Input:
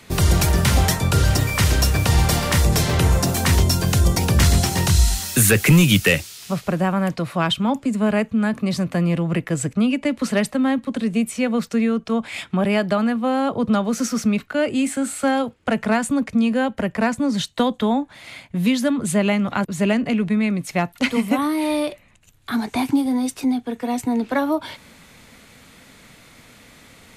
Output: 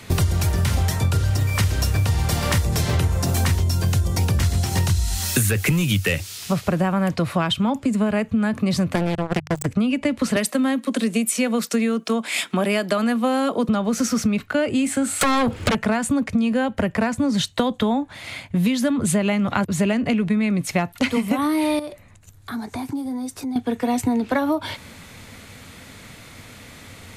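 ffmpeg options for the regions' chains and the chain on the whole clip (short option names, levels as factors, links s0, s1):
-filter_complex "[0:a]asettb=1/sr,asplit=3[s0][s1][s2];[s0]atrim=end=8.954[s3];[s1]atrim=start=8.95:end=9.66,asetpts=PTS-STARTPTS,afade=t=in:d=0.004:c=qsin,afade=t=out:st=0.706:d=0.004:c=qsin,acrusher=bits=2:mix=0:aa=0.5,bandreject=f=50:t=h:w=6,bandreject=f=100:t=h:w=6,bandreject=f=150:t=h:w=6[s4];[s2]atrim=start=9.656[s5];[s3][s4]acrossfade=d=0.004:c1=hsin:c2=qsin[s6];[s6][s5]acrossfade=d=0.004:c1=qsin:c2=hsin,asettb=1/sr,asplit=3[s7][s8][s9];[s7]atrim=end=10.364[s10];[s8]atrim=start=10.36:end=13.69,asetpts=PTS-STARTPTS,afade=t=in:d=0.004:c=qsin,afade=t=out:st=3.326:d=0.004:c=qsin,highpass=f=210:w=0.5412,highpass=f=210:w=1.3066,highshelf=f=5500:g=11.5,bandreject=f=830:w=15[s11];[s9]atrim=start=13.686[s12];[s10][s11]acrossfade=d=0.004:c1=hsin:c2=qsin[s13];[s13][s12]acrossfade=d=0.004:c1=qsin:c2=hsin,asettb=1/sr,asplit=3[s14][s15][s16];[s14]atrim=end=15.214[s17];[s15]atrim=start=15.21:end=15.75,asetpts=PTS-STARTPTS,afade=t=in:d=0.004:c=qsin,afade=t=out:st=0.536:d=0.004:c=qsin,acompressor=threshold=0.0112:ratio=2.5:attack=3.2:release=140:knee=1:detection=peak,aeval=exprs='0.178*sin(PI/2*8.91*val(0)/0.178)':c=same[s18];[s16]atrim=start=15.746[s19];[s17][s18]acrossfade=d=0.004:c1=hsin:c2=qsin[s20];[s20][s19]acrossfade=d=0.004:c1=qsin:c2=hsin,asettb=1/sr,asplit=3[s21][s22][s23];[s21]atrim=end=21.794[s24];[s22]atrim=start=21.79:end=23.56,asetpts=PTS-STARTPTS,afade=t=in:d=0.004:c=qsin,afade=t=out:st=1.766:d=0.004:c=qsin,equalizer=f=2800:w=1.8:g=-8,acompressor=threshold=0.01:ratio=2:attack=3.2:release=140:knee=1:detection=peak[s25];[s23]atrim=start=23.556[s26];[s24][s25]acrossfade=d=0.004:c1=hsin:c2=qsin[s27];[s27][s26]acrossfade=d=0.004:c1=qsin:c2=hsin,equalizer=f=94:t=o:w=0.41:g=11,acompressor=threshold=0.0891:ratio=12,volume=1.68"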